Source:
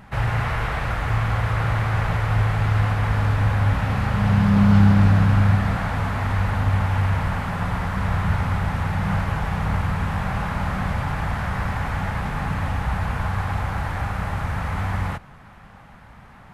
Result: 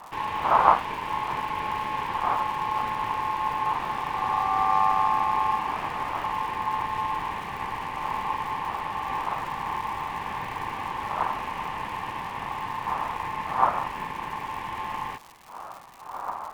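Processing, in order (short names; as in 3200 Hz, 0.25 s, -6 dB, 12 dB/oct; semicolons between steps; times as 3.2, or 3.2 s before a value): wind noise 210 Hz -25 dBFS; crackle 340/s -30 dBFS; ring modulator 970 Hz; gain -5.5 dB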